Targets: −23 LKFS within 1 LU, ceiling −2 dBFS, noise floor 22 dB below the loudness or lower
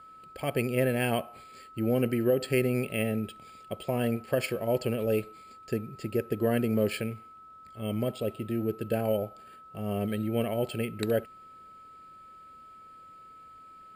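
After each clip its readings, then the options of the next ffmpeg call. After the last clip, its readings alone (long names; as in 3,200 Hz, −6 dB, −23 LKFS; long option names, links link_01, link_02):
interfering tone 1,300 Hz; level of the tone −48 dBFS; integrated loudness −30.0 LKFS; sample peak −12.0 dBFS; target loudness −23.0 LKFS
→ -af "bandreject=frequency=1300:width=30"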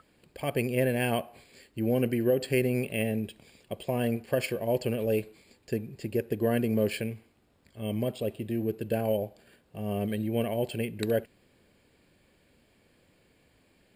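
interfering tone none found; integrated loudness −30.0 LKFS; sample peak −12.0 dBFS; target loudness −23.0 LKFS
→ -af "volume=7dB"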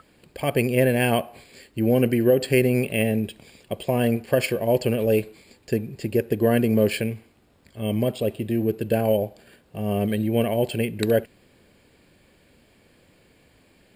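integrated loudness −23.0 LKFS; sample peak −5.0 dBFS; background noise floor −59 dBFS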